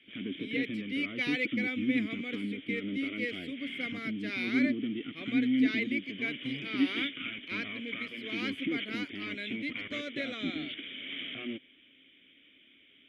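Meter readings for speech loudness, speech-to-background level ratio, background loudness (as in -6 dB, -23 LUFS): -36.5 LUFS, -1.0 dB, -35.5 LUFS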